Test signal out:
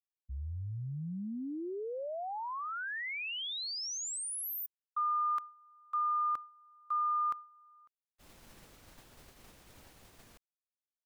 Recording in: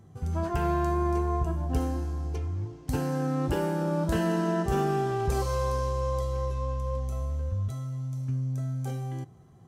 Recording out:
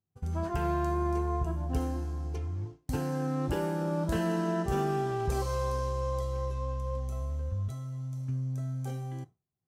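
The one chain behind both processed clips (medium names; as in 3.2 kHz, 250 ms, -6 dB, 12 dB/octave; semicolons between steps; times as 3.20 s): expander -33 dBFS; trim -3 dB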